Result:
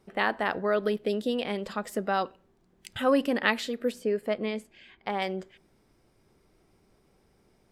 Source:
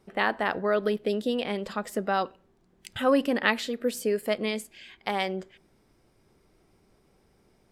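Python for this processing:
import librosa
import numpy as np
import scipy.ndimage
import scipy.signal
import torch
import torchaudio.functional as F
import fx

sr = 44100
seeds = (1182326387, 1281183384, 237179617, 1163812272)

y = fx.lowpass(x, sr, hz=1900.0, slope=6, at=(3.92, 5.22))
y = y * 10.0 ** (-1.0 / 20.0)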